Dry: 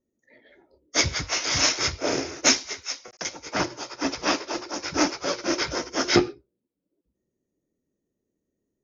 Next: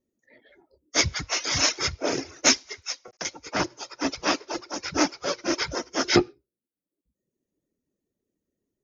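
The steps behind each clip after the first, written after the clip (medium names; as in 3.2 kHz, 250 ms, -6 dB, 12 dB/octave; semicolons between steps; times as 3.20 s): reverb removal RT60 0.9 s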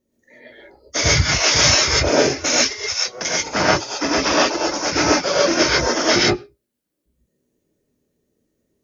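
peak limiter -16 dBFS, peak gain reduction 10.5 dB; gated-style reverb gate 160 ms rising, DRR -6 dB; trim +6 dB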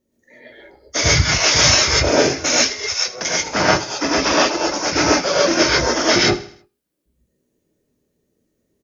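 feedback delay 79 ms, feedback 42%, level -16.5 dB; trim +1 dB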